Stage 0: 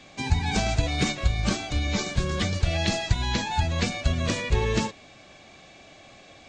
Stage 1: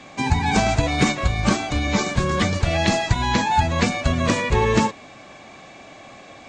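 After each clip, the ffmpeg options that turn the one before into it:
-af "equalizer=f=125:t=o:w=1:g=4,equalizer=f=250:t=o:w=1:g=7,equalizer=f=500:t=o:w=1:g=4,equalizer=f=1000:t=o:w=1:g=10,equalizer=f=2000:t=o:w=1:g=5,equalizer=f=8000:t=o:w=1:g=5"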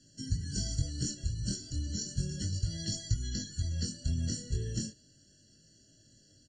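-af "firequalizer=gain_entry='entry(130,0);entry(200,-8);entry(290,-9);entry(580,-22);entry(830,-17);entry(2300,-19);entry(4800,8);entry(7000,6)':delay=0.05:min_phase=1,flanger=delay=18.5:depth=6.4:speed=0.34,afftfilt=real='re*eq(mod(floor(b*sr/1024/670),2),0)':imag='im*eq(mod(floor(b*sr/1024/670),2),0)':win_size=1024:overlap=0.75,volume=0.447"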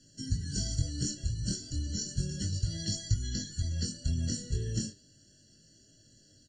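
-af "flanger=delay=2:depth=8.3:regen=83:speed=0.5:shape=sinusoidal,volume=2"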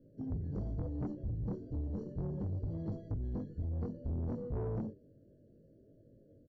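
-af "lowpass=f=500:t=q:w=4.2,aresample=16000,asoftclip=type=tanh:threshold=0.0237,aresample=44100"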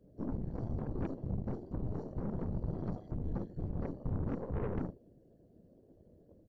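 -af "afftfilt=real='hypot(re,im)*cos(2*PI*random(0))':imag='hypot(re,im)*sin(2*PI*random(1))':win_size=512:overlap=0.75,aeval=exprs='0.0282*(cos(1*acos(clip(val(0)/0.0282,-1,1)))-cos(1*PI/2))+0.00316*(cos(8*acos(clip(val(0)/0.0282,-1,1)))-cos(8*PI/2))':c=same,volume=2"

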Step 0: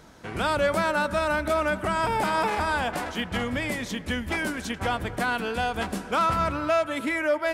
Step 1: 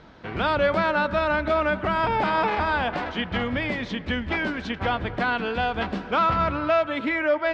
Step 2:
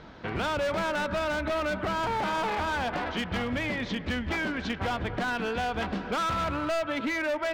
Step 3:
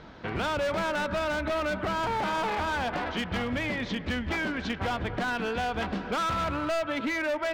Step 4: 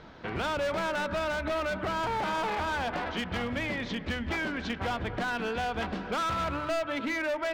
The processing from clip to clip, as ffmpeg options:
-af "lowpass=f=4200:w=0.5412,lowpass=f=4200:w=1.3066,volume=1.26"
-af "asoftclip=type=hard:threshold=0.075,acompressor=threshold=0.0316:ratio=3,volume=1.19"
-af anull
-af "bandreject=f=50:t=h:w=6,bandreject=f=100:t=h:w=6,bandreject=f=150:t=h:w=6,bandreject=f=200:t=h:w=6,bandreject=f=250:t=h:w=6,bandreject=f=300:t=h:w=6,volume=0.841"

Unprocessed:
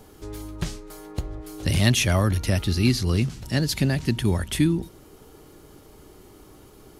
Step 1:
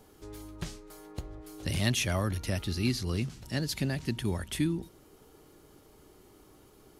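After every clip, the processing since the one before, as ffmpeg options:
-af "lowshelf=f=150:g=-3.5,volume=0.422"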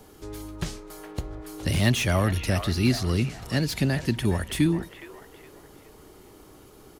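-filter_complex "[0:a]acrossover=split=480|2500[s0][s1][s2];[s1]asplit=6[s3][s4][s5][s6][s7][s8];[s4]adelay=414,afreqshift=42,volume=0.447[s9];[s5]adelay=828,afreqshift=84,volume=0.178[s10];[s6]adelay=1242,afreqshift=126,volume=0.0716[s11];[s7]adelay=1656,afreqshift=168,volume=0.0285[s12];[s8]adelay=2070,afreqshift=210,volume=0.0115[s13];[s3][s9][s10][s11][s12][s13]amix=inputs=6:normalize=0[s14];[s2]asoftclip=type=tanh:threshold=0.0178[s15];[s0][s14][s15]amix=inputs=3:normalize=0,volume=2.24"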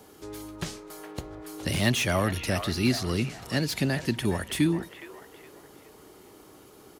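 -af "highpass=f=170:p=1"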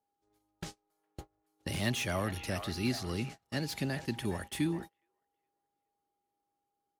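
-af "aeval=exprs='val(0)+0.00631*sin(2*PI*810*n/s)':c=same,agate=range=0.0282:threshold=0.02:ratio=16:detection=peak,volume=0.398"

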